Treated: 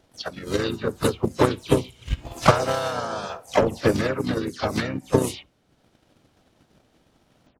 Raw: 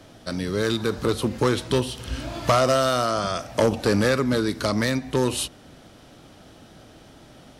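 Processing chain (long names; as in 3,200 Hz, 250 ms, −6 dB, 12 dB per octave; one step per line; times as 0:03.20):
every frequency bin delayed by itself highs early, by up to 133 ms
noise reduction from a noise print of the clip's start 9 dB
pitch-shifted copies added −5 semitones −5 dB, +3 semitones −8 dB, +4 semitones −12 dB
transient designer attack +12 dB, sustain −4 dB
level −6.5 dB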